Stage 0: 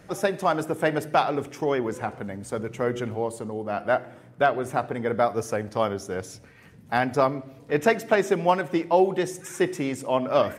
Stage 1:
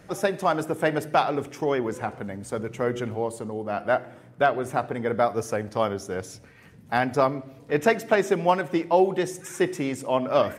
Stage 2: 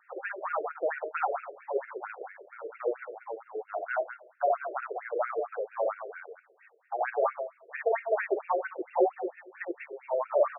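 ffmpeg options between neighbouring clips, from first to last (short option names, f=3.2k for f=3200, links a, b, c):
-af anull
-af "aecho=1:1:58.31|192.4:0.891|0.355,afftfilt=real='re*between(b*sr/1024,470*pow(2000/470,0.5+0.5*sin(2*PI*4.4*pts/sr))/1.41,470*pow(2000/470,0.5+0.5*sin(2*PI*4.4*pts/sr))*1.41)':imag='im*between(b*sr/1024,470*pow(2000/470,0.5+0.5*sin(2*PI*4.4*pts/sr))/1.41,470*pow(2000/470,0.5+0.5*sin(2*PI*4.4*pts/sr))*1.41)':win_size=1024:overlap=0.75,volume=-4.5dB"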